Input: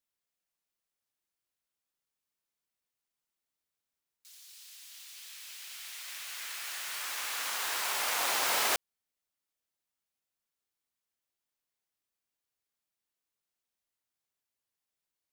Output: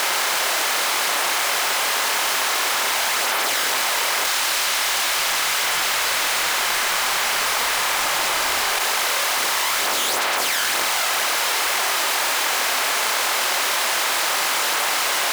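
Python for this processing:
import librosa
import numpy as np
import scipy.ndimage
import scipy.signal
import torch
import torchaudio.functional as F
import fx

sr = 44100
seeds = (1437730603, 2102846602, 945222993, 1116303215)

y = fx.bin_compress(x, sr, power=0.2)
y = fx.highpass(y, sr, hz=1200.0, slope=6)
y = fx.tilt_eq(y, sr, slope=-2.0)
y = fx.leveller(y, sr, passes=3)
y = fx.chorus_voices(y, sr, voices=4, hz=1.1, base_ms=26, depth_ms=4.0, mix_pct=60)
y = fx.env_flatten(y, sr, amount_pct=100)
y = F.gain(torch.from_numpy(y), 3.0).numpy()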